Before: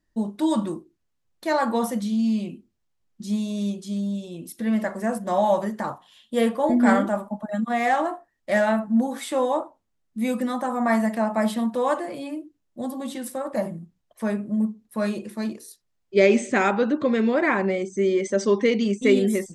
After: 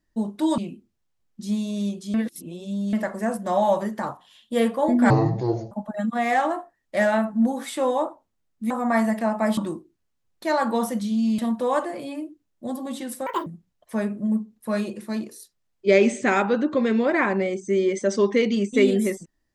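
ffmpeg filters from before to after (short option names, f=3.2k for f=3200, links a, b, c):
-filter_complex "[0:a]asplit=11[a][b][c][d][e][f][g][h][i][j][k];[a]atrim=end=0.582[l];[b]atrim=start=2.388:end=3.952[m];[c]atrim=start=3.948:end=4.742,asetpts=PTS-STARTPTS,areverse[n];[d]atrim=start=4.738:end=6.914[o];[e]atrim=start=6.91:end=7.26,asetpts=PTS-STARTPTS,asetrate=25137,aresample=44100[p];[f]atrim=start=7.256:end=10.252[q];[g]atrim=start=10.658:end=11.532[r];[h]atrim=start=0.578:end=2.392[s];[i]atrim=start=11.528:end=13.414[t];[j]atrim=start=13.41:end=13.75,asetpts=PTS-STARTPTS,asetrate=74970,aresample=44100[u];[k]atrim=start=13.746[v];[l][m]acrossfade=d=0.004:c1=hsin:c2=hsin[w];[w][n]acrossfade=d=0.004:c1=hsin:c2=hsin[x];[x][o]acrossfade=d=0.004:c1=hsin:c2=hsin[y];[y][p]acrossfade=d=0.004:c1=hsin:c2=hsin[z];[z][q]acrossfade=d=0.004:c1=hsin:c2=hsin[aa];[aa][r]acrossfade=d=0.004:c1=hsin:c2=hsin[ab];[ab][s]acrossfade=d=0.004:c1=hsin:c2=hsin[ac];[ac][t]acrossfade=d=0.004:c1=hsin:c2=hsin[ad];[ad][u]acrossfade=d=0.004:c1=hsin:c2=hsin[ae];[ae][v]acrossfade=d=0.004:c1=hsin:c2=hsin"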